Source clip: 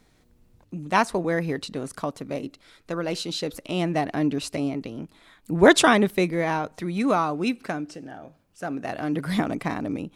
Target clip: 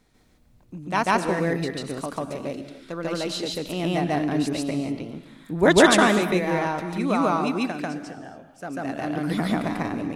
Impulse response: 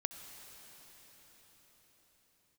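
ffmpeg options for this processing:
-filter_complex "[0:a]asplit=2[a][b];[1:a]atrim=start_sample=2205,afade=t=out:st=0.34:d=0.01,atrim=end_sample=15435,adelay=143[c];[b][c]afir=irnorm=-1:irlink=0,volume=3.5dB[d];[a][d]amix=inputs=2:normalize=0,volume=-3.5dB"

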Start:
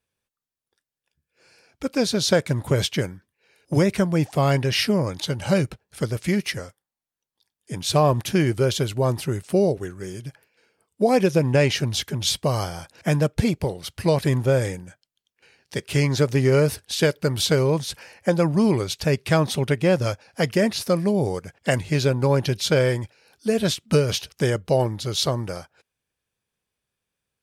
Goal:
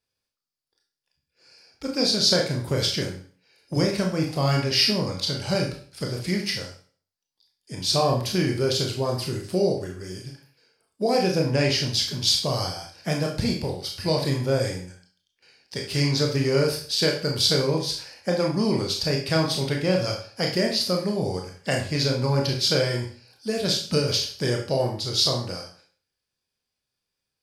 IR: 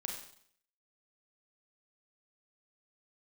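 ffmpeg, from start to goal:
-filter_complex "[0:a]equalizer=f=4.8k:t=o:w=0.4:g=13.5[a];[1:a]atrim=start_sample=2205,asetrate=61740,aresample=44100[b];[a][b]afir=irnorm=-1:irlink=0"

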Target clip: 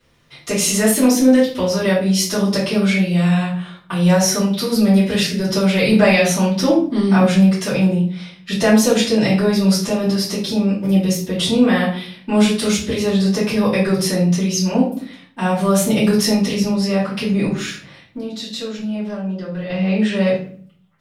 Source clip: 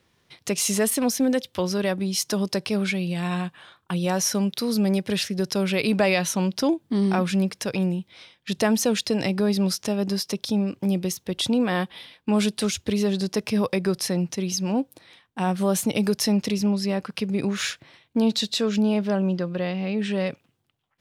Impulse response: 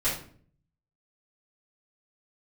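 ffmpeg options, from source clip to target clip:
-filter_complex "[0:a]asettb=1/sr,asplit=3[a][b][c];[a]atrim=end=17.474[d];[b]atrim=start=17.47:end=19.7,asetpts=PTS-STARTPTS,afade=t=in:d=0.004:c=qsin,afade=t=out:st=2.226:d=0.004:c=qsin,acompressor=threshold=-32dB:ratio=6[e];[c]atrim=start=19.696[f];[d][e]acrossfade=d=0.004:c1=hsin:c2=qsin[g];[g][f]acrossfade=d=0.004:c1=qsin:c2=hsin[h];[1:a]atrim=start_sample=2205[i];[h][i]afir=irnorm=-1:irlink=0,volume=-2dB"

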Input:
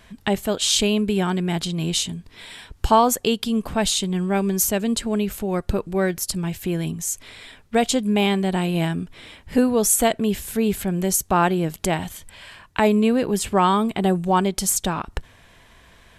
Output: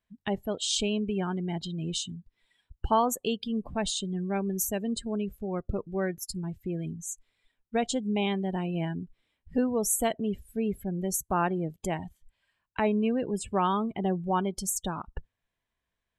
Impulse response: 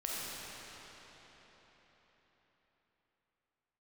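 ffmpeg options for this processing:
-af "afftdn=nr=26:nf=-28,volume=-8.5dB"

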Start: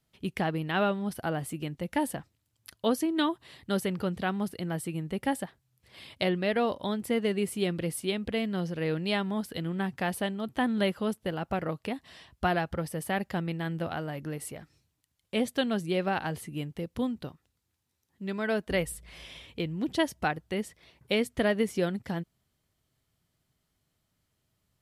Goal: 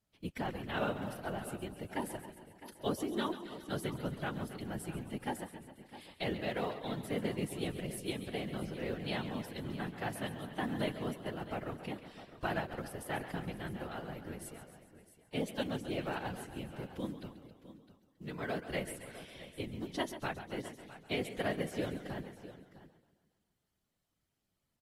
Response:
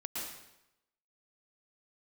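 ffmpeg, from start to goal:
-filter_complex "[0:a]asplit=2[a][b];[b]aecho=0:1:136|272|408|544|680|816:0.237|0.135|0.077|0.0439|0.025|0.0143[c];[a][c]amix=inputs=2:normalize=0,acrusher=bits=8:mode=log:mix=0:aa=0.000001,afftfilt=real='hypot(re,im)*cos(2*PI*random(0))':imag='hypot(re,im)*sin(2*PI*random(1))':win_size=512:overlap=0.75,asplit=2[d][e];[e]aecho=0:1:266|658:0.106|0.178[f];[d][f]amix=inputs=2:normalize=0,volume=-3dB" -ar 48000 -c:a aac -b:a 48k

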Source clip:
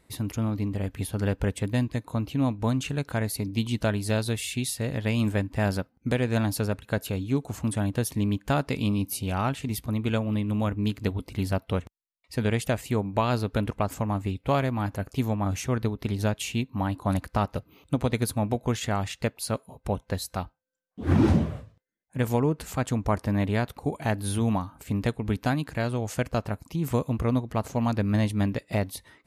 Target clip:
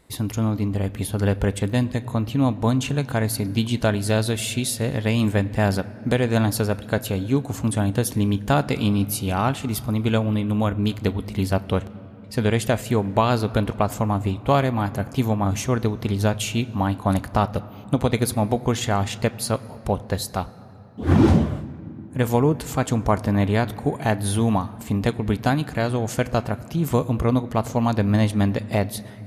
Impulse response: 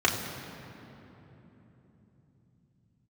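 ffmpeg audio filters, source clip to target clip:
-filter_complex "[0:a]asplit=2[a][b];[1:a]atrim=start_sample=2205,lowshelf=f=440:g=-7[c];[b][c]afir=irnorm=-1:irlink=0,volume=-24.5dB[d];[a][d]amix=inputs=2:normalize=0,volume=5dB"

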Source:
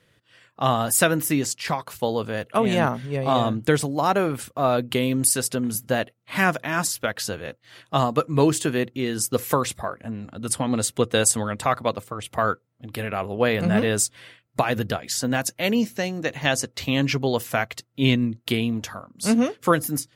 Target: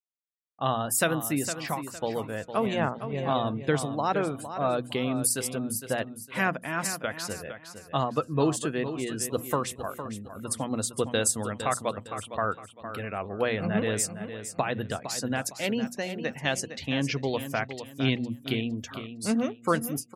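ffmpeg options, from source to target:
-filter_complex "[0:a]afftdn=nr=34:nf=-39,agate=range=-33dB:threshold=-42dB:ratio=3:detection=peak,bandreject=f=60:t=h:w=6,bandreject=f=120:t=h:w=6,bandreject=f=180:t=h:w=6,bandreject=f=240:t=h:w=6,asplit=2[a][b];[b]aecho=0:1:459|918|1377:0.299|0.0925|0.0287[c];[a][c]amix=inputs=2:normalize=0,volume=-6dB"

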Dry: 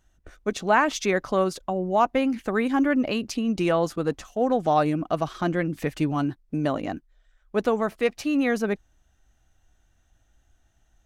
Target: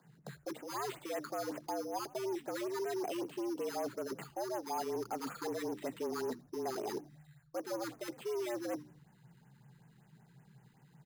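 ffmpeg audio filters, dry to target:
-filter_complex "[0:a]deesser=0.85,bandreject=f=60:t=h:w=6,bandreject=f=120:t=h:w=6,bandreject=f=180:t=h:w=6,areverse,acompressor=threshold=-33dB:ratio=16,areverse,asoftclip=type=hard:threshold=-36.5dB,asplit=2[a][b];[b]highpass=f=720:p=1,volume=5dB,asoftclip=type=tanh:threshold=-36.5dB[c];[a][c]amix=inputs=2:normalize=0,lowpass=f=1.1k:p=1,volume=-6dB,acrusher=samples=8:mix=1:aa=0.000001,afreqshift=120,asplit=2[d][e];[e]asplit=3[f][g][h];[f]adelay=82,afreqshift=-75,volume=-22.5dB[i];[g]adelay=164,afreqshift=-150,volume=-29.6dB[j];[h]adelay=246,afreqshift=-225,volume=-36.8dB[k];[i][j][k]amix=inputs=3:normalize=0[l];[d][l]amix=inputs=2:normalize=0,afftfilt=real='re*(1-between(b*sr/1024,580*pow(4500/580,0.5+0.5*sin(2*PI*5.3*pts/sr))/1.41,580*pow(4500/580,0.5+0.5*sin(2*PI*5.3*pts/sr))*1.41))':imag='im*(1-between(b*sr/1024,580*pow(4500/580,0.5+0.5*sin(2*PI*5.3*pts/sr))/1.41,580*pow(4500/580,0.5+0.5*sin(2*PI*5.3*pts/sr))*1.41))':win_size=1024:overlap=0.75,volume=6.5dB"

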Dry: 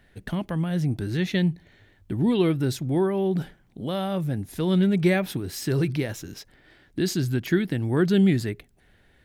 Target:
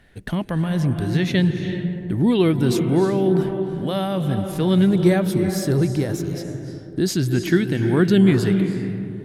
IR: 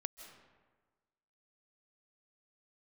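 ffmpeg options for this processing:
-filter_complex "[0:a]asettb=1/sr,asplit=3[a][b][c];[a]atrim=end=4.894[d];[b]atrim=start=4.89:end=7.09,asetpts=PTS-STARTPTS,afade=t=in:d=0.004:c=qsin,afade=t=out:st=2.196:d=0.004:c=qsin,equalizer=f=2.5k:w=1.3:g=-9.5[e];[c]atrim=start=7.086[f];[d][e]acrossfade=d=0.004:c1=hsin:c2=qsin[g];[g][f]acrossfade=d=0.004:c1=qsin:c2=hsin[h];[1:a]atrim=start_sample=2205,asetrate=23814,aresample=44100[i];[h][i]afir=irnorm=-1:irlink=0,volume=4dB"

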